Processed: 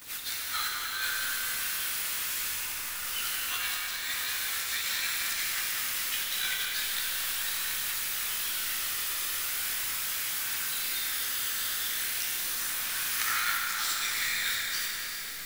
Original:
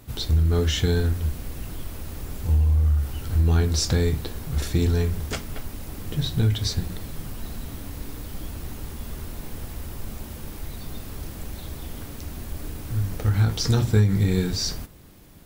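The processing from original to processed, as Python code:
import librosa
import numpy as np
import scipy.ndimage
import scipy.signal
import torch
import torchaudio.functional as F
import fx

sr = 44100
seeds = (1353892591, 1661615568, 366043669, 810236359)

y = scipy.signal.sosfilt(scipy.signal.cheby2(4, 60, 420.0, 'highpass', fs=sr, output='sos'), x)
y = fx.over_compress(y, sr, threshold_db=-41.0, ratio=-0.5)
y = fx.dmg_noise_colour(y, sr, seeds[0], colour='pink', level_db=-69.0)
y = fx.echo_alternate(y, sr, ms=196, hz=2400.0, feedback_pct=58, wet_db=-6)
y = fx.chorus_voices(y, sr, voices=2, hz=0.19, base_ms=16, depth_ms=1.8, mix_pct=60)
y = fx.quant_companded(y, sr, bits=4)
y = fx.rev_schroeder(y, sr, rt60_s=3.6, comb_ms=25, drr_db=-1.0)
y = F.gain(torch.from_numpy(y), 8.5).numpy()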